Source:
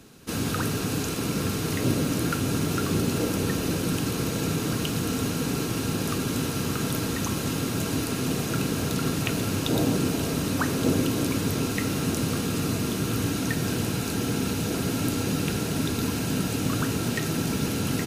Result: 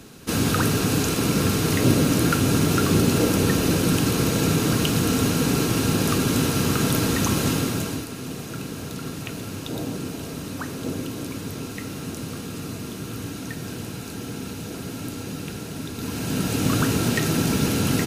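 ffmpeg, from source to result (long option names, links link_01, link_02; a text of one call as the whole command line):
ffmpeg -i in.wav -af "volume=17dB,afade=type=out:start_time=7.47:duration=0.6:silence=0.251189,afade=type=in:start_time=15.94:duration=0.78:silence=0.281838" out.wav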